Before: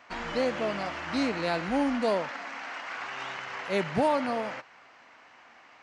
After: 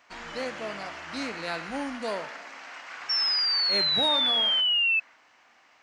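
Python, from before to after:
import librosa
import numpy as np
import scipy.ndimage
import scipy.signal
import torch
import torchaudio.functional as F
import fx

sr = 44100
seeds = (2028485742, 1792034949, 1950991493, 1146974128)

y = fx.high_shelf(x, sr, hz=4200.0, db=10.5)
y = fx.hum_notches(y, sr, base_hz=60, count=4)
y = fx.comb_fb(y, sr, f0_hz=60.0, decay_s=1.3, harmonics='all', damping=0.0, mix_pct=60)
y = fx.spec_paint(y, sr, seeds[0], shape='fall', start_s=3.09, length_s=1.91, low_hz=2600.0, high_hz=5500.0, level_db=-26.0)
y = fx.dynamic_eq(y, sr, hz=1600.0, q=0.99, threshold_db=-43.0, ratio=4.0, max_db=6)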